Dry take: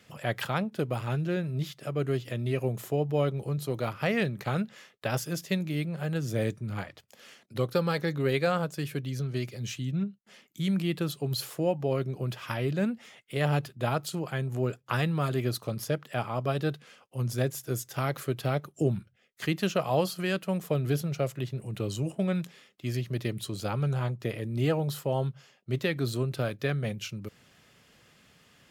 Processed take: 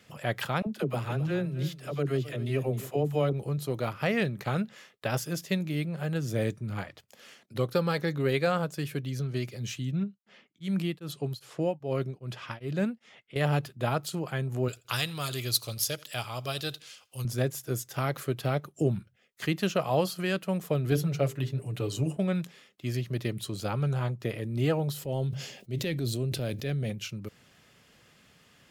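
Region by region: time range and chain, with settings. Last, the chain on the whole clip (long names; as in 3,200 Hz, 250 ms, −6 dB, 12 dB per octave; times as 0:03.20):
0:00.62–0:03.33: all-pass dispersion lows, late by 46 ms, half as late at 480 Hz + single-tap delay 267 ms −15 dB
0:10.00–0:13.36: low-pass that shuts in the quiet parts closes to 2,800 Hz, open at −25.5 dBFS + tremolo along a rectified sine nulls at 2.5 Hz
0:14.68–0:17.25: drawn EQ curve 100 Hz 0 dB, 170 Hz −11 dB, 1,800 Hz −2 dB, 4,000 Hz +11 dB + repeating echo 84 ms, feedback 33%, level −23 dB
0:20.91–0:22.17: mains-hum notches 50/100/150/200/250/300/350/400/450/500 Hz + comb filter 6.9 ms, depth 61%
0:24.92–0:26.90: transient designer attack −5 dB, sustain +5 dB + parametric band 1,200 Hz −12.5 dB 1.2 octaves + level that may fall only so fast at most 70 dB per second
whole clip: no processing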